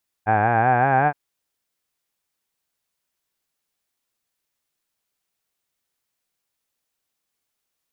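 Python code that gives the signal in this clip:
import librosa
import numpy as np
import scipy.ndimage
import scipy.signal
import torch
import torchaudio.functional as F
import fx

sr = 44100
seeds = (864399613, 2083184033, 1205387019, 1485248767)

y = fx.formant_vowel(sr, seeds[0], length_s=0.87, hz=103.0, glide_st=6.0, vibrato_hz=5.3, vibrato_st=0.9, f1_hz=770.0, f2_hz=1600.0, f3_hz=2400.0)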